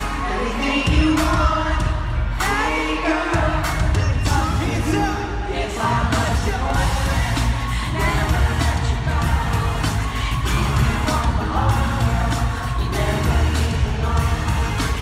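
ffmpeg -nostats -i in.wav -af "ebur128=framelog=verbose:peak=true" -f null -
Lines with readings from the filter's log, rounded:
Integrated loudness:
  I:         -20.3 LUFS
  Threshold: -30.3 LUFS
Loudness range:
  LRA:         1.1 LU
  Threshold: -40.4 LUFS
  LRA low:   -20.8 LUFS
  LRA high:  -19.6 LUFS
True peak:
  Peak:       -6.4 dBFS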